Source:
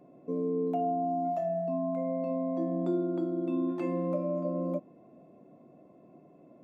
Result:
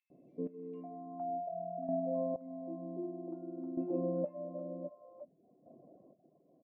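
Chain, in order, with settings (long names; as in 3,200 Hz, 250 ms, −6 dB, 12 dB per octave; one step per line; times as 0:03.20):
three-band delay without the direct sound highs, lows, mids 100/460 ms, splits 690/3,200 Hz
square-wave tremolo 0.53 Hz, depth 60%, duty 25%
low-pass filter sweep 2,300 Hz → 650 Hz, 0:00.88–0:01.39
reverb reduction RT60 0.59 s
level −4 dB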